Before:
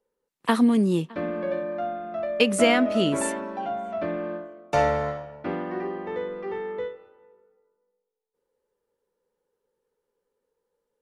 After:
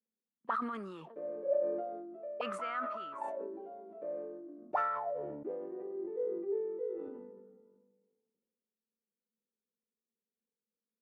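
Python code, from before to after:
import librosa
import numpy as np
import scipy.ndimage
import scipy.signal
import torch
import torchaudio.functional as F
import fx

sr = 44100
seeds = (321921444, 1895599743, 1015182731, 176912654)

y = fx.auto_wah(x, sr, base_hz=220.0, top_hz=1300.0, q=12.0, full_db=-18.5, direction='up')
y = fx.sustainer(y, sr, db_per_s=35.0)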